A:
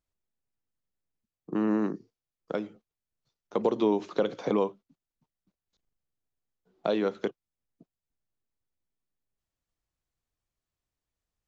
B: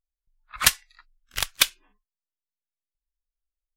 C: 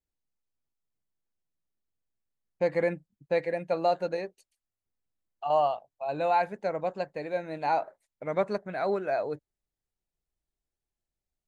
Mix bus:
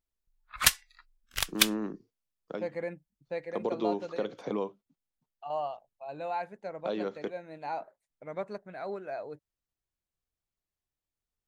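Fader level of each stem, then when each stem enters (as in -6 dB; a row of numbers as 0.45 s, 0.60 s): -6.5 dB, -4.0 dB, -9.0 dB; 0.00 s, 0.00 s, 0.00 s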